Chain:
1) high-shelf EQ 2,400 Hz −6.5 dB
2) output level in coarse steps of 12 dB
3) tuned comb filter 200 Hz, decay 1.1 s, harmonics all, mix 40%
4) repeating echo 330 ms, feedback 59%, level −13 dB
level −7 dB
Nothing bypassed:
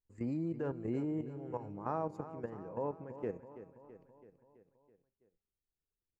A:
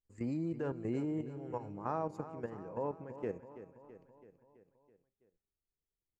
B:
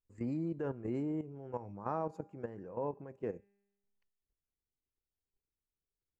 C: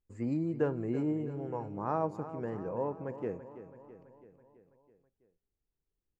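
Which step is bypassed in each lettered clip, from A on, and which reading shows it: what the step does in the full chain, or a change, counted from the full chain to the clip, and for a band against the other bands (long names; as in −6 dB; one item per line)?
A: 1, 2 kHz band +2.0 dB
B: 4, echo-to-direct ratio −11.0 dB to none audible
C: 2, change in integrated loudness +4.5 LU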